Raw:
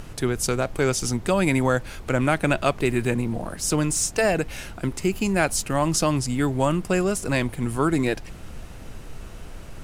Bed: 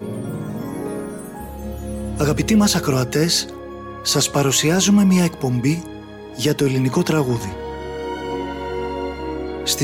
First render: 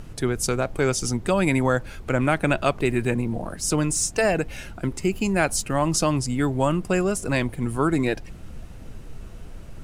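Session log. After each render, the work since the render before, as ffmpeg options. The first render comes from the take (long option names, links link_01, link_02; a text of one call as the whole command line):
ffmpeg -i in.wav -af "afftdn=noise_reduction=6:noise_floor=-40" out.wav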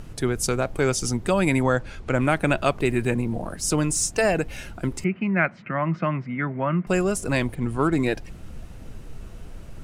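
ffmpeg -i in.wav -filter_complex "[0:a]asettb=1/sr,asplit=3[link_01][link_02][link_03];[link_01]atrim=end=1.634[link_04];[link_02]atrim=start=1.63:end=2.15,asetpts=PTS-STARTPTS,afade=type=in:duration=0.004:curve=qsin,afade=type=out:start_time=0.516:duration=0.004:curve=qsin,lowpass=7500[link_05];[link_03]atrim=start=2.146[link_06];[link_04][link_05]acrossfade=duration=0.004:curve1=hsin:curve2=qsin[link_07];[link_07][link_06]acrossfade=duration=0.004:curve1=qsin:curve2=hsin,asettb=1/sr,asplit=3[link_08][link_09][link_10];[link_08]atrim=end=5.044[link_11];[link_09]atrim=start=5.04:end=6.87,asetpts=PTS-STARTPTS,afade=type=in:duration=0.004:curve=qsin,afade=type=out:start_time=1.826:duration=0.004:curve=qsin,highpass=frequency=150:width=0.5412,highpass=frequency=150:width=1.3066,equalizer=frequency=170:width_type=q:width=4:gain=5,equalizer=frequency=290:width_type=q:width=4:gain=-7,equalizer=frequency=450:width_type=q:width=4:gain=-10,equalizer=frequency=820:width_type=q:width=4:gain=-7,equalizer=frequency=1400:width_type=q:width=4:gain=3,equalizer=frequency=2100:width_type=q:width=4:gain=9,lowpass=frequency=2200:width=0.5412,lowpass=frequency=2200:width=1.3066[link_12];[link_10]atrim=start=6.866[link_13];[link_11][link_12]acrossfade=duration=0.004:curve1=hsin:curve2=qsin[link_14];[link_14][link_13]acrossfade=duration=0.004:curve1=qsin:curve2=hsin,asplit=3[link_15][link_16][link_17];[link_15]afade=type=out:start_time=7.54:duration=0.02[link_18];[link_16]adynamicsmooth=sensitivity=5:basefreq=5700,afade=type=in:start_time=7.54:duration=0.02,afade=type=out:start_time=7.96:duration=0.02[link_19];[link_17]afade=type=in:start_time=7.96:duration=0.02[link_20];[link_18][link_19][link_20]amix=inputs=3:normalize=0" out.wav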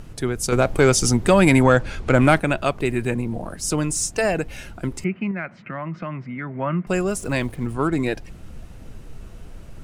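ffmpeg -i in.wav -filter_complex "[0:a]asettb=1/sr,asplit=3[link_01][link_02][link_03];[link_01]atrim=end=0.524[link_04];[link_02]atrim=start=0.52:end=2.4,asetpts=PTS-STARTPTS,afade=type=in:duration=0.004:curve=qsin,afade=type=out:start_time=1.876:duration=0.004:curve=qsin,acontrast=87[link_05];[link_03]atrim=start=2.396[link_06];[link_04][link_05]acrossfade=duration=0.004:curve1=hsin:curve2=qsin[link_07];[link_07][link_06]acrossfade=duration=0.004:curve1=qsin:curve2=hsin,asettb=1/sr,asplit=3[link_08][link_09][link_10];[link_08]atrim=end=5.314[link_11];[link_09]atrim=start=5.31:end=6.56,asetpts=PTS-STARTPTS,afade=type=in:duration=0.004:curve=qsin,afade=type=out:start_time=1.246:duration=0.004:curve=qsin,acompressor=threshold=-28dB:ratio=2.5:attack=3.2:release=140:knee=1:detection=peak[link_12];[link_10]atrim=start=6.556[link_13];[link_11][link_12]acrossfade=duration=0.004:curve1=hsin:curve2=qsin[link_14];[link_14][link_13]acrossfade=duration=0.004:curve1=qsin:curve2=hsin,asettb=1/sr,asplit=3[link_15][link_16][link_17];[link_15]atrim=end=7.084[link_18];[link_16]atrim=start=7.08:end=7.74,asetpts=PTS-STARTPTS,afade=type=in:duration=0.004:curve=qsin,afade=type=out:start_time=0.656:duration=0.004:curve=qsin,aeval=exprs='val(0)*gte(abs(val(0)),0.00668)':channel_layout=same[link_19];[link_17]atrim=start=7.736[link_20];[link_18][link_19]acrossfade=duration=0.004:curve1=hsin:curve2=qsin[link_21];[link_21][link_20]acrossfade=duration=0.004:curve1=qsin:curve2=hsin" out.wav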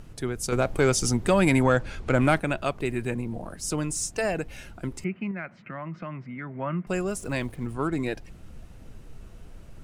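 ffmpeg -i in.wav -af "volume=-6dB" out.wav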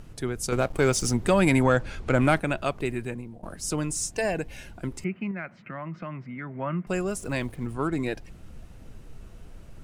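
ffmpeg -i in.wav -filter_complex "[0:a]asettb=1/sr,asplit=3[link_01][link_02][link_03];[link_01]atrim=end=0.534[link_04];[link_02]atrim=start=0.53:end=1.14,asetpts=PTS-STARTPTS,afade=type=in:duration=0.004:curve=qsin,afade=type=out:start_time=0.606:duration=0.004:curve=qsin,aeval=exprs='sgn(val(0))*max(abs(val(0))-0.00891,0)':channel_layout=same[link_05];[link_03]atrim=start=1.136[link_06];[link_04][link_05]acrossfade=duration=0.004:curve1=hsin:curve2=qsin[link_07];[link_07][link_06]acrossfade=duration=0.004:curve1=qsin:curve2=hsin,asettb=1/sr,asplit=3[link_08][link_09][link_10];[link_08]atrim=end=4.114[link_11];[link_09]atrim=start=4.11:end=4.8,asetpts=PTS-STARTPTS,afade=type=in:duration=0.004:curve=qsin,afade=type=out:start_time=0.686:duration=0.004:curve=qsin,asuperstop=centerf=1300:order=4:qfactor=6.8[link_12];[link_10]atrim=start=4.796[link_13];[link_11][link_12]acrossfade=duration=0.004:curve1=hsin:curve2=qsin[link_14];[link_14][link_13]acrossfade=duration=0.004:curve1=qsin:curve2=hsin,asplit=2[link_15][link_16];[link_15]atrim=end=3.43,asetpts=PTS-STARTPTS,afade=type=out:start_time=2.83:duration=0.6:silence=0.16788[link_17];[link_16]atrim=start=3.43,asetpts=PTS-STARTPTS,afade=type=in:duration=0.004:curve=hsin:silence=0.16788[link_18];[link_17][link_18]concat=n=2:v=0:a=1" out.wav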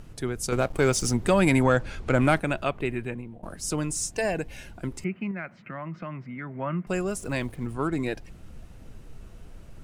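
ffmpeg -i in.wav -filter_complex "[0:a]asettb=1/sr,asplit=3[link_01][link_02][link_03];[link_01]atrim=end=2.644[link_04];[link_02]atrim=start=2.64:end=3.43,asetpts=PTS-STARTPTS,afade=type=in:duration=0.004:curve=qsin,afade=type=out:start_time=0.786:duration=0.004:curve=qsin,highshelf=frequency=3900:width_type=q:width=1.5:gain=-7[link_05];[link_03]atrim=start=3.426[link_06];[link_04][link_05]acrossfade=duration=0.004:curve1=hsin:curve2=qsin[link_07];[link_07][link_06]acrossfade=duration=0.004:curve1=qsin:curve2=hsin" out.wav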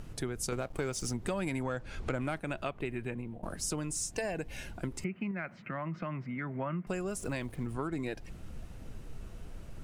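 ffmpeg -i in.wav -af "acompressor=threshold=-32dB:ratio=6" out.wav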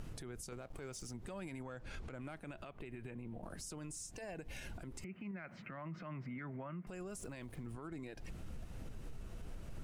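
ffmpeg -i in.wav -af "acompressor=threshold=-38dB:ratio=6,alimiter=level_in=14dB:limit=-24dB:level=0:latency=1:release=81,volume=-14dB" out.wav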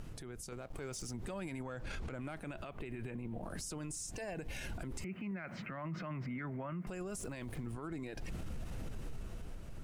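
ffmpeg -i in.wav -af "dynaudnorm=framelen=130:gausssize=13:maxgain=8.5dB,alimiter=level_in=10.5dB:limit=-24dB:level=0:latency=1:release=24,volume=-10.5dB" out.wav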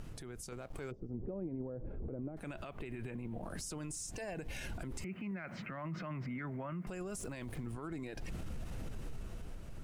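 ffmpeg -i in.wav -filter_complex "[0:a]asplit=3[link_01][link_02][link_03];[link_01]afade=type=out:start_time=0.9:duration=0.02[link_04];[link_02]lowpass=frequency=440:width_type=q:width=1.6,afade=type=in:start_time=0.9:duration=0.02,afade=type=out:start_time=2.36:duration=0.02[link_05];[link_03]afade=type=in:start_time=2.36:duration=0.02[link_06];[link_04][link_05][link_06]amix=inputs=3:normalize=0" out.wav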